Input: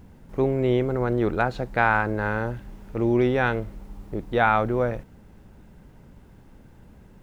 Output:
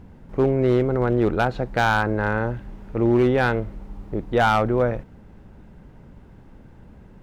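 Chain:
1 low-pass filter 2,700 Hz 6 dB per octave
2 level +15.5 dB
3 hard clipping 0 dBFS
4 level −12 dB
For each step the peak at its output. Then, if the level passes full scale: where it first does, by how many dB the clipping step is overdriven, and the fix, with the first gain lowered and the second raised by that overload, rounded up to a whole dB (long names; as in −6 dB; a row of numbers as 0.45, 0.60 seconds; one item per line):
−7.0, +8.5, 0.0, −12.0 dBFS
step 2, 8.5 dB
step 2 +6.5 dB, step 4 −3 dB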